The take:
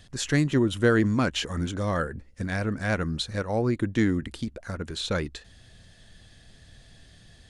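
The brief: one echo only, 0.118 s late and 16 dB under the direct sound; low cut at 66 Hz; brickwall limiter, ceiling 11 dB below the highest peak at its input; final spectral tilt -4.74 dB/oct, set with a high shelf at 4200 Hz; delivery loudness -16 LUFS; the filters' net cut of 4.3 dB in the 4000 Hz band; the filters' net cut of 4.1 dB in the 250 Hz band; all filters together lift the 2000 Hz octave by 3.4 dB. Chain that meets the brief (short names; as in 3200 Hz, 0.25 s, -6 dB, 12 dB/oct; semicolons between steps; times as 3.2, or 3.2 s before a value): HPF 66 Hz; bell 250 Hz -5.5 dB; bell 2000 Hz +6.5 dB; bell 4000 Hz -5 dB; high shelf 4200 Hz -5.5 dB; limiter -19.5 dBFS; echo 0.118 s -16 dB; gain +15.5 dB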